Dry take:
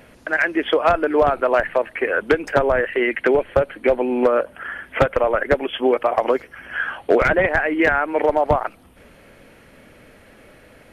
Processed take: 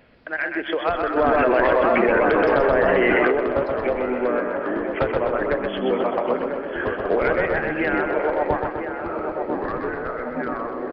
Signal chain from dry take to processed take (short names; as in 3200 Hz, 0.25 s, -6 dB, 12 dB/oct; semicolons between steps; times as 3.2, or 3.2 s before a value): narrowing echo 0.994 s, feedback 67%, band-pass 690 Hz, level -6 dB; echoes that change speed 0.548 s, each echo -4 st, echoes 2, each echo -6 dB; on a send: feedback echo 0.127 s, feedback 53%, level -5 dB; on the sum: downsampling 11025 Hz; 1.17–3.32 fast leveller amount 100%; gain -7 dB